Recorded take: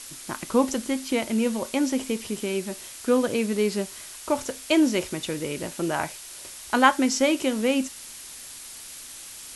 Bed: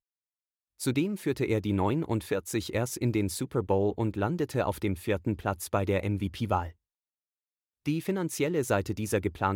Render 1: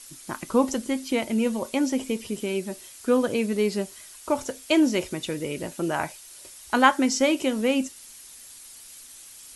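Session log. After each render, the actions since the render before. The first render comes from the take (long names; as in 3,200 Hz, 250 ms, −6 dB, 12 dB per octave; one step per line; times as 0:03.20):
broadband denoise 8 dB, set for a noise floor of −42 dBFS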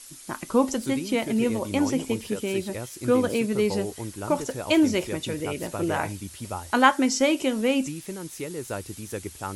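mix in bed −6 dB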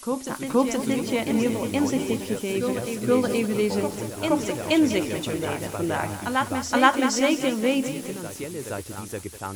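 on a send: backwards echo 473 ms −6.5 dB
on the sum: feedback echo at a low word length 198 ms, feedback 55%, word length 6 bits, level −10.5 dB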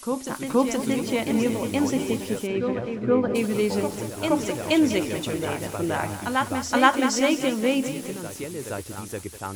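0:02.46–0:03.34: low-pass filter 3,000 Hz → 1,500 Hz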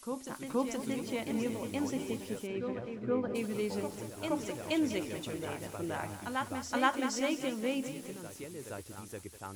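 level −11 dB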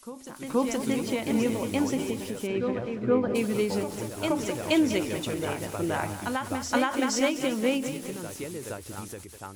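automatic gain control gain up to 8.5 dB
every ending faded ahead of time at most 110 dB per second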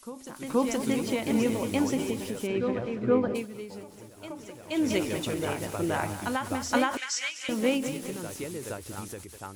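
0:03.25–0:04.91: duck −13.5 dB, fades 0.22 s
0:06.97–0:07.49: Chebyshev band-pass filter 1,800–7,300 Hz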